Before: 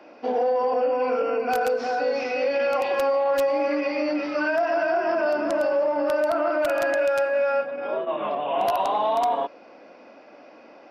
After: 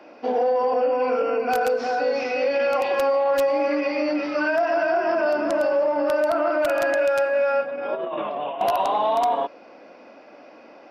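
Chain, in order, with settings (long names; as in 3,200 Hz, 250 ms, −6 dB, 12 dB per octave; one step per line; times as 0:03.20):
0:07.94–0:08.61: compressor whose output falls as the input rises −30 dBFS, ratio −1
level +1.5 dB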